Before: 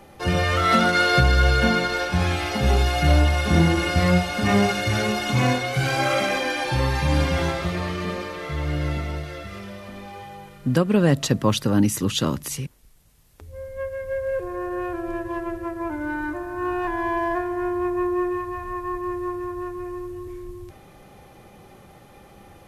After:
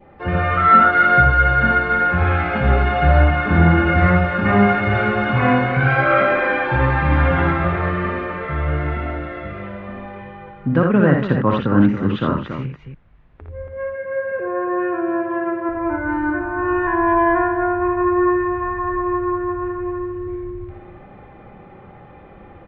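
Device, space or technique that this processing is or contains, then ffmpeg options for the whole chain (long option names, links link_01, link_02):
action camera in a waterproof case: -filter_complex "[0:a]asettb=1/sr,asplit=3[link_01][link_02][link_03];[link_01]atrim=end=13.674[link_04];[link_02]atrim=start=13.67:end=15.69,asetpts=PTS-STARTPTS,afade=type=in:duration=0.004:curve=qsin,afade=type=out:start_time=2.016:duration=0.004:curve=qsin,highpass=frequency=150:width=0.5412,highpass=frequency=150:width=1.3066[link_05];[link_03]atrim=start=15.686[link_06];[link_04][link_05]acrossfade=duration=0.004:curve1=hsin:curve2=qsin[link_07];[link_07][link_06]acrossfade=duration=0.004:curve1=qsin:curve2=hsin,equalizer=frequency=3600:width=4.2:gain=3.5,aecho=1:1:59|83|280:0.562|0.422|0.355,adynamicequalizer=threshold=0.0126:dfrequency=1400:dqfactor=2.4:tfrequency=1400:tqfactor=2.4:attack=5:release=100:ratio=0.375:range=3.5:mode=boostabove:tftype=bell,lowpass=frequency=2200:width=0.5412,lowpass=frequency=2200:width=1.3066,dynaudnorm=framelen=370:gausssize=3:maxgain=4dB" -ar 16000 -c:a aac -b:a 64k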